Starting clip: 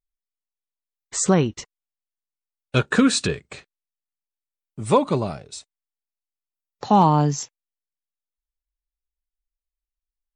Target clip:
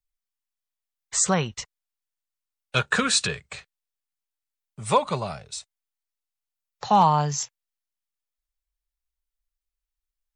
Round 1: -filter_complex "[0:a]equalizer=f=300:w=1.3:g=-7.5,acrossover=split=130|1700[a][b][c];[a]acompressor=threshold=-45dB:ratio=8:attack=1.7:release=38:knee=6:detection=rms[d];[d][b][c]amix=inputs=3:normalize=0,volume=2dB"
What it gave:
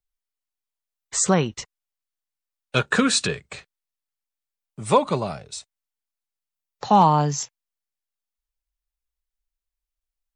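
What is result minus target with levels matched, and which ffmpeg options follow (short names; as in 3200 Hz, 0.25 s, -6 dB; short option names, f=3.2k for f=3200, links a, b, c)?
250 Hz band +3.5 dB
-filter_complex "[0:a]equalizer=f=300:w=1.3:g=-18.5,acrossover=split=130|1700[a][b][c];[a]acompressor=threshold=-45dB:ratio=8:attack=1.7:release=38:knee=6:detection=rms[d];[d][b][c]amix=inputs=3:normalize=0,volume=2dB"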